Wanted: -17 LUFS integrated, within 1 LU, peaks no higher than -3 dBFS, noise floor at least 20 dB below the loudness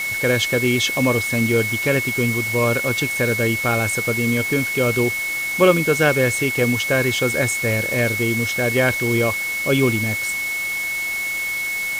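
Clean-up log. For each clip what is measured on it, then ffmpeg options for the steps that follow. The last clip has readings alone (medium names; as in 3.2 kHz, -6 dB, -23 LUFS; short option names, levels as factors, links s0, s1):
steady tone 2.2 kHz; tone level -22 dBFS; noise floor -25 dBFS; noise floor target -39 dBFS; loudness -19.0 LUFS; peak level -2.0 dBFS; loudness target -17.0 LUFS
-> -af "bandreject=f=2200:w=30"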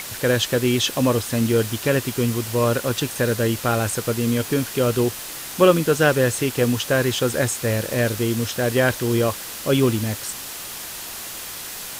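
steady tone not found; noise floor -34 dBFS; noise floor target -42 dBFS
-> -af "afftdn=nr=8:nf=-34"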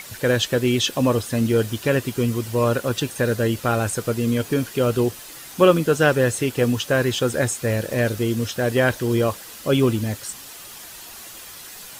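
noise floor -40 dBFS; noise floor target -41 dBFS
-> -af "afftdn=nr=6:nf=-40"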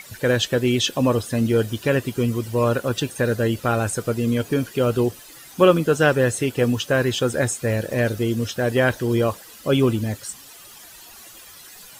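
noise floor -44 dBFS; loudness -21.5 LUFS; peak level -3.0 dBFS; loudness target -17.0 LUFS
-> -af "volume=1.68,alimiter=limit=0.708:level=0:latency=1"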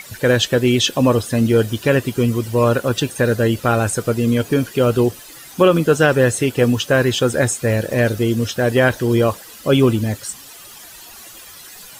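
loudness -17.0 LUFS; peak level -3.0 dBFS; noise floor -39 dBFS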